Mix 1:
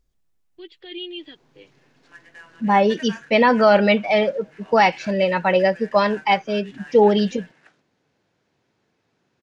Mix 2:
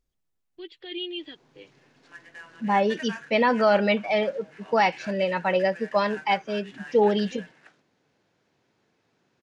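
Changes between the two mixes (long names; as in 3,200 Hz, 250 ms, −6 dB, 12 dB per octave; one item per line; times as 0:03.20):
second voice −5.5 dB
master: add low-shelf EQ 87 Hz −5.5 dB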